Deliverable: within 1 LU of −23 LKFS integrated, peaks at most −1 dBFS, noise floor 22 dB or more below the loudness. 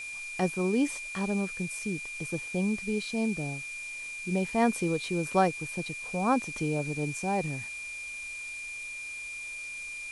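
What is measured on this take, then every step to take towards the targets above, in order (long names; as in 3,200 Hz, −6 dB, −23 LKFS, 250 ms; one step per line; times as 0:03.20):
interfering tone 2,400 Hz; level of the tone −37 dBFS; background noise floor −40 dBFS; target noise floor −54 dBFS; integrated loudness −31.5 LKFS; sample peak −11.5 dBFS; target loudness −23.0 LKFS
→ notch filter 2,400 Hz, Q 30
broadband denoise 14 dB, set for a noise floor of −40 dBFS
level +8.5 dB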